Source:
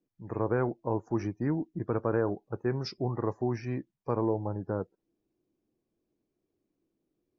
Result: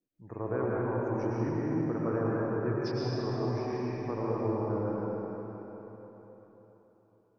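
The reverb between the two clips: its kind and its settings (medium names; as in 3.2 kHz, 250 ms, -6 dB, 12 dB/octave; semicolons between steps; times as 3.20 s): algorithmic reverb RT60 4.1 s, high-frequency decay 0.85×, pre-delay 70 ms, DRR -6.5 dB; trim -7 dB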